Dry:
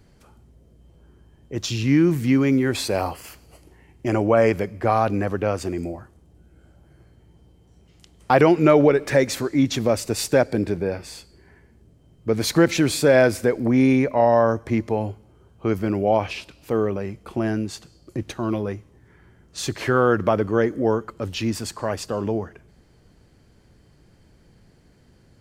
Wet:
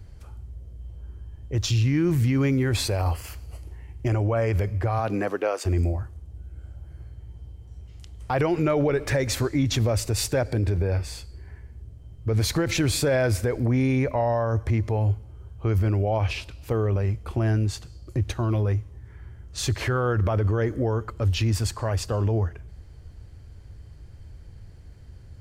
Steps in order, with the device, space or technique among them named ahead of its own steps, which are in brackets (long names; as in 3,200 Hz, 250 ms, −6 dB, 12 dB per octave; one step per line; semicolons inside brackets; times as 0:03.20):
0:04.98–0:05.65: high-pass filter 120 Hz → 450 Hz 24 dB per octave
car stereo with a boomy subwoofer (low shelf with overshoot 130 Hz +12.5 dB, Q 1.5; brickwall limiter −15 dBFS, peak gain reduction 10.5 dB)